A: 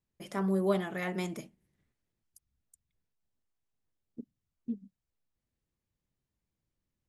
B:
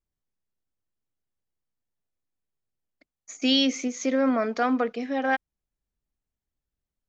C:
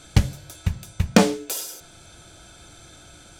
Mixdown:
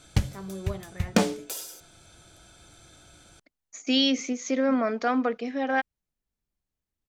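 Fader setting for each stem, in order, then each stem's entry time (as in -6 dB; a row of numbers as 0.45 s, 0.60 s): -8.5 dB, -1.0 dB, -6.5 dB; 0.00 s, 0.45 s, 0.00 s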